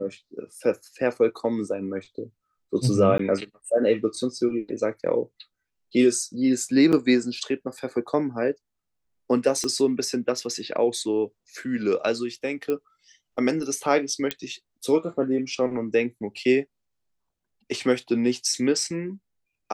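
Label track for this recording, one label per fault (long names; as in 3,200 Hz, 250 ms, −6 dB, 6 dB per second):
3.180000	3.190000	drop-out 13 ms
6.920000	6.930000	drop-out 7.9 ms
9.640000	9.640000	click −16 dBFS
12.700000	12.700000	click −16 dBFS
14.310000	14.310000	click −9 dBFS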